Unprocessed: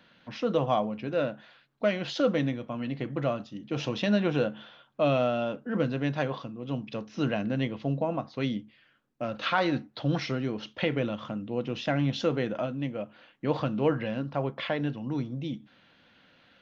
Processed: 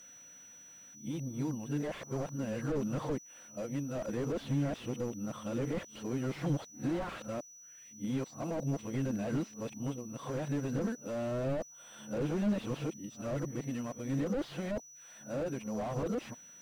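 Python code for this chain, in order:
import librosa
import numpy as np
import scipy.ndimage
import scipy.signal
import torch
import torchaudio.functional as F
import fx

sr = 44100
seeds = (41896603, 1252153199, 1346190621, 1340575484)

y = np.flip(x).copy()
y = y + 10.0 ** (-46.0 / 20.0) * np.sin(2.0 * np.pi * 5900.0 * np.arange(len(y)) / sr)
y = fx.slew_limit(y, sr, full_power_hz=19.0)
y = y * librosa.db_to_amplitude(-4.0)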